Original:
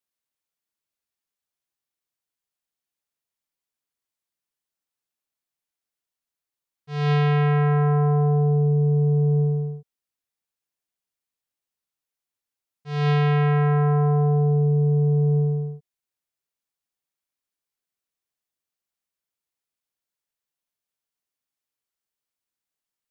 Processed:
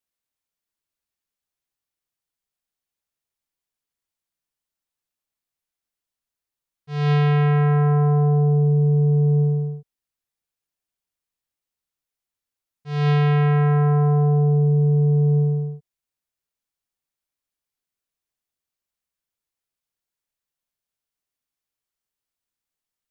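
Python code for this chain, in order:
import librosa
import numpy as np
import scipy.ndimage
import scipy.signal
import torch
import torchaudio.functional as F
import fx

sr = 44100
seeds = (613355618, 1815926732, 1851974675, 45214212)

y = fx.low_shelf(x, sr, hz=88.0, db=8.5)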